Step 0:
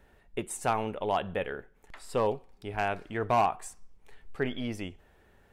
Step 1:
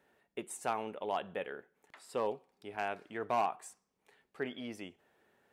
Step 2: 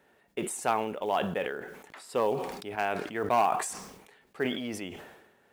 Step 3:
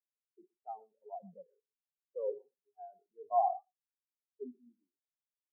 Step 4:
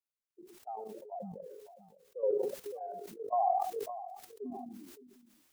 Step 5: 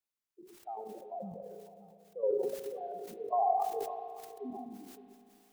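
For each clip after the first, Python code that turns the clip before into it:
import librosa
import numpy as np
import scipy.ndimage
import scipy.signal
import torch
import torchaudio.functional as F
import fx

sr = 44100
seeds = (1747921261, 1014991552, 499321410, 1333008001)

y1 = scipy.signal.sosfilt(scipy.signal.butter(2, 210.0, 'highpass', fs=sr, output='sos'), x)
y1 = y1 * 10.0 ** (-6.5 / 20.0)
y2 = fx.quant_float(y1, sr, bits=4)
y2 = fx.sustainer(y2, sr, db_per_s=55.0)
y2 = y2 * 10.0 ** (6.5 / 20.0)
y3 = scipy.signal.medfilt(y2, 15)
y3 = y3 + 10.0 ** (-7.5 / 20.0) * np.pad(y3, (int(120 * sr / 1000.0), 0))[:len(y3)]
y3 = fx.spectral_expand(y3, sr, expansion=4.0)
y3 = y3 * 10.0 ** (-5.0 / 20.0)
y4 = fx.level_steps(y3, sr, step_db=12)
y4 = fx.echo_feedback(y4, sr, ms=566, feedback_pct=24, wet_db=-24.0)
y4 = fx.sustainer(y4, sr, db_per_s=30.0)
y4 = y4 * 10.0 ** (8.0 / 20.0)
y5 = fx.rev_spring(y4, sr, rt60_s=3.1, pass_ms=(35,), chirp_ms=75, drr_db=9.5)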